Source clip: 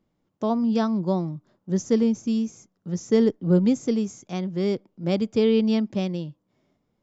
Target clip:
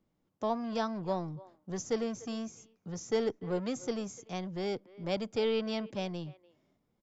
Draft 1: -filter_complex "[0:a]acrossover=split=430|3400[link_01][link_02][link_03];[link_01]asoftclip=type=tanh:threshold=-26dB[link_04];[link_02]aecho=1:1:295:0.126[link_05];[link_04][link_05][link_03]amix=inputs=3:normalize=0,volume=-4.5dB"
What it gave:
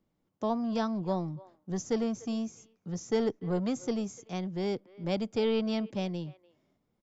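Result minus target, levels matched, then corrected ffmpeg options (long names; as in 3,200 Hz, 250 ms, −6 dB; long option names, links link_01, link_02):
soft clipping: distortion −4 dB
-filter_complex "[0:a]acrossover=split=430|3400[link_01][link_02][link_03];[link_01]asoftclip=type=tanh:threshold=-33.5dB[link_04];[link_02]aecho=1:1:295:0.126[link_05];[link_04][link_05][link_03]amix=inputs=3:normalize=0,volume=-4.5dB"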